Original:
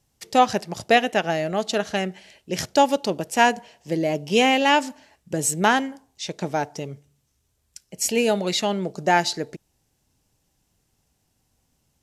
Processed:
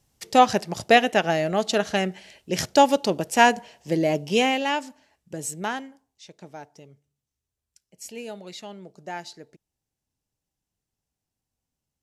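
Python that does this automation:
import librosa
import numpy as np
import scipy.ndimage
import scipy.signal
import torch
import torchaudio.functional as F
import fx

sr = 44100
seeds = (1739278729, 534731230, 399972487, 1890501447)

y = fx.gain(x, sr, db=fx.line((4.15, 1.0), (4.8, -8.5), (5.47, -8.5), (6.31, -16.0)))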